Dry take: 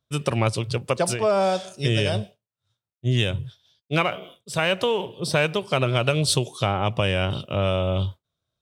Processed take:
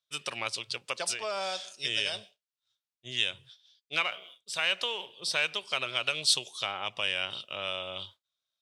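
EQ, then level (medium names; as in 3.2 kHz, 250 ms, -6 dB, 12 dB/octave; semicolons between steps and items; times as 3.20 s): band-pass filter 4.2 kHz, Q 0.78; 0.0 dB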